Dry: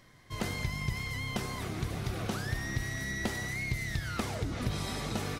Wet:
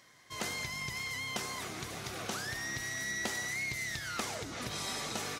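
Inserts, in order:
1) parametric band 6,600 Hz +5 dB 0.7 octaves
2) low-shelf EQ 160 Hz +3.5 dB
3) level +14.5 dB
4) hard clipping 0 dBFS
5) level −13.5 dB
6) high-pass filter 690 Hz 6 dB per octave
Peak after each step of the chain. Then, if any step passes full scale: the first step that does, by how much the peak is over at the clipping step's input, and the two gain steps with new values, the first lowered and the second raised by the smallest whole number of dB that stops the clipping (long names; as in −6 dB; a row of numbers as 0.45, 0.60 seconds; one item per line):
−20.5, −18.5, −4.0, −4.0, −17.5, −19.0 dBFS
no step passes full scale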